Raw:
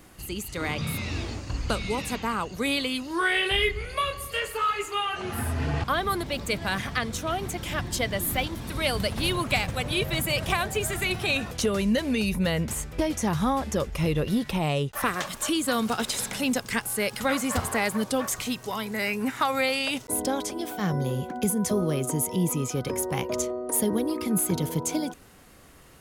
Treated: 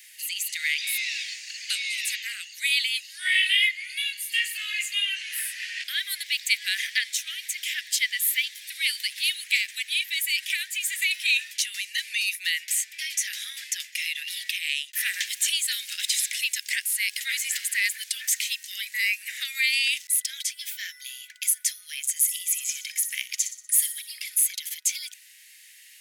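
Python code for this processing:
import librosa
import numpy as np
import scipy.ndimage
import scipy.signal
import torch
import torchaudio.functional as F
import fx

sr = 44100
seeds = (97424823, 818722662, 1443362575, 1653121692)

y = fx.echo_wet_highpass(x, sr, ms=61, feedback_pct=49, hz=3800.0, wet_db=-9.0, at=(22.16, 24.36), fade=0.02)
y = scipy.signal.sosfilt(scipy.signal.butter(12, 1800.0, 'highpass', fs=sr, output='sos'), y)
y = fx.rider(y, sr, range_db=3, speed_s=2.0)
y = y * librosa.db_to_amplitude(5.5)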